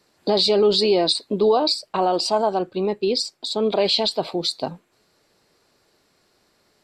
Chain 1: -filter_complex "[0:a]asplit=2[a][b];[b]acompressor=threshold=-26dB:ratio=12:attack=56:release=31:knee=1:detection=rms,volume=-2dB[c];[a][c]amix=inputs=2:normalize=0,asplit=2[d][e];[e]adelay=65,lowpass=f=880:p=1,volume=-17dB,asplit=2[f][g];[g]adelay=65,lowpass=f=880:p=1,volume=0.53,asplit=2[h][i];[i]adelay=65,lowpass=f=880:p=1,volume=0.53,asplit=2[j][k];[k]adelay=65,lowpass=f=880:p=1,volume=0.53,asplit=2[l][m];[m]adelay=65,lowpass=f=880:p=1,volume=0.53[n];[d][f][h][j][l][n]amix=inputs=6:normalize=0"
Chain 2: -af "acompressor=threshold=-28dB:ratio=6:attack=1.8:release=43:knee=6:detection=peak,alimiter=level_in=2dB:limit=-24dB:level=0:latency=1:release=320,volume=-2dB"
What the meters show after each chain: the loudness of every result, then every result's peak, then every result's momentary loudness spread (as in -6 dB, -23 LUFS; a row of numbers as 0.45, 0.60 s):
-17.5, -35.0 LUFS; -4.0, -26.0 dBFS; 7, 4 LU